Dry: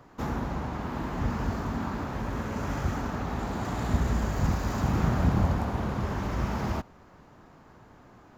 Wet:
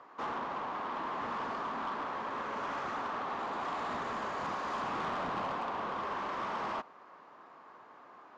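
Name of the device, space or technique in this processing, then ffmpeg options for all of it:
intercom: -af "highpass=460,lowpass=3700,equalizer=frequency=1100:width_type=o:width=0.34:gain=8,asoftclip=type=tanh:threshold=-30.5dB"

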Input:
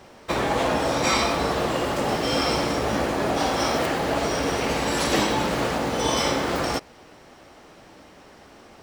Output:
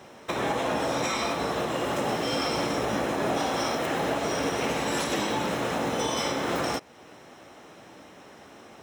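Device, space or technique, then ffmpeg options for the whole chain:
PA system with an anti-feedback notch: -af "highpass=100,asuperstop=centerf=4600:order=4:qfactor=7.9,alimiter=limit=-17.5dB:level=0:latency=1:release=339"

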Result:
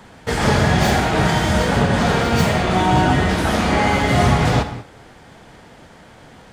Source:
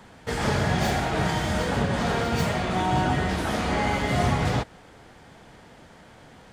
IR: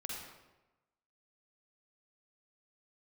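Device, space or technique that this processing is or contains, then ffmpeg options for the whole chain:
keyed gated reverb: -filter_complex "[0:a]asplit=3[link_01][link_02][link_03];[1:a]atrim=start_sample=2205[link_04];[link_02][link_04]afir=irnorm=-1:irlink=0[link_05];[link_03]apad=whole_len=287583[link_06];[link_05][link_06]sidechaingate=range=-33dB:threshold=-46dB:ratio=16:detection=peak,volume=-4.5dB[link_07];[link_01][link_07]amix=inputs=2:normalize=0,volume=5dB"

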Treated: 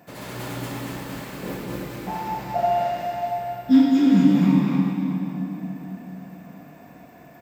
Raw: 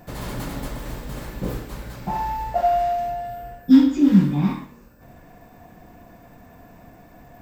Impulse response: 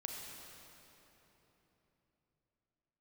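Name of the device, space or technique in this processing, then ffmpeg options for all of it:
stadium PA: -filter_complex "[0:a]highpass=150,equalizer=frequency=2400:width_type=o:width=0.77:gain=3.5,aecho=1:1:204.1|236.2:0.316|0.708[link_01];[1:a]atrim=start_sample=2205[link_02];[link_01][link_02]afir=irnorm=-1:irlink=0"

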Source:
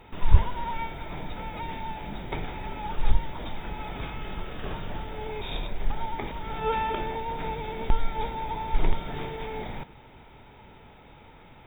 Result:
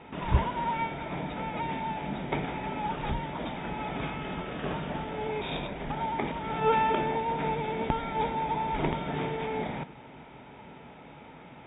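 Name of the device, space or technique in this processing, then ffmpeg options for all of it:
guitar cabinet: -af "highpass=88,equalizer=frequency=94:width_type=q:width=4:gain=-10,equalizer=frequency=160:width_type=q:width=4:gain=4,equalizer=frequency=260:width_type=q:width=4:gain=5,equalizer=frequency=630:width_type=q:width=4:gain=3,lowpass=frequency=3400:width=0.5412,lowpass=frequency=3400:width=1.3066,volume=2.5dB"

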